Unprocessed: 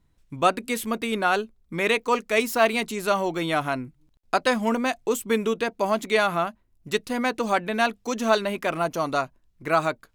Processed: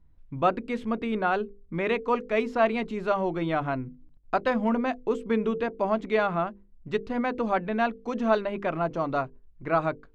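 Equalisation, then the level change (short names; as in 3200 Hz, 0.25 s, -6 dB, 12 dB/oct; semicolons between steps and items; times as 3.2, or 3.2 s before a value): tape spacing loss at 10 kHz 34 dB; low shelf 74 Hz +11.5 dB; notches 50/100/150/200/250/300/350/400/450/500 Hz; 0.0 dB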